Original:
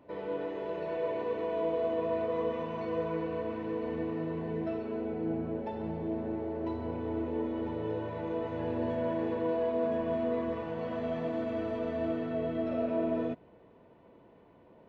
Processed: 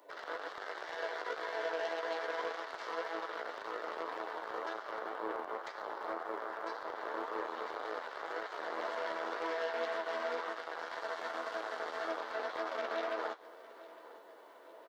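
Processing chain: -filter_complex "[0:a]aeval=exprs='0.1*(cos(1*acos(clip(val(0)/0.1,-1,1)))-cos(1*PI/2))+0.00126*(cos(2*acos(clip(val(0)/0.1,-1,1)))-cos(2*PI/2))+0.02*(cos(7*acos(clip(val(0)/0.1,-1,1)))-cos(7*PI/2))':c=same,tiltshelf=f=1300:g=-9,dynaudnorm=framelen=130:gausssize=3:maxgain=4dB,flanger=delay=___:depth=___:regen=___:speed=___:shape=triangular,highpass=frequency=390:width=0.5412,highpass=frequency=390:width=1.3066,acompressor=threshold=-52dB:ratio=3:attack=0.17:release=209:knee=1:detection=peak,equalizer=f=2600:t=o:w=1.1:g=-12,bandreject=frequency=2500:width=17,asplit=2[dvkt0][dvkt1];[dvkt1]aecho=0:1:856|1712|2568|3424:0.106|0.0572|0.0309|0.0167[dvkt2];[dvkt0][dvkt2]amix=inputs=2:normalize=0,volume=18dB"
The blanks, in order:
8.9, 4.9, 31, 1.9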